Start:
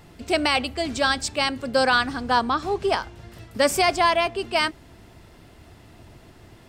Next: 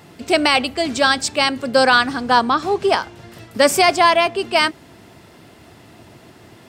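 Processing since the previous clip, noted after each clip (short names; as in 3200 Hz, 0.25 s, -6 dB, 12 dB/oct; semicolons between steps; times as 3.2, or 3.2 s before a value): HPF 130 Hz 12 dB/oct; gain +6 dB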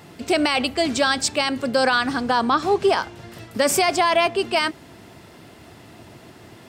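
limiter -9 dBFS, peak gain reduction 7.5 dB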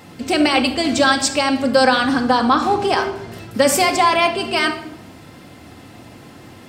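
shoebox room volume 2800 m³, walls furnished, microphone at 2.1 m; gain +2 dB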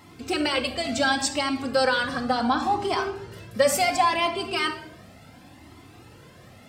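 cascading flanger rising 0.7 Hz; gain -3 dB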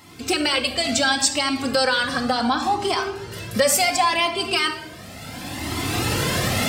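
recorder AGC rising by 18 dB/s; high shelf 2300 Hz +8 dB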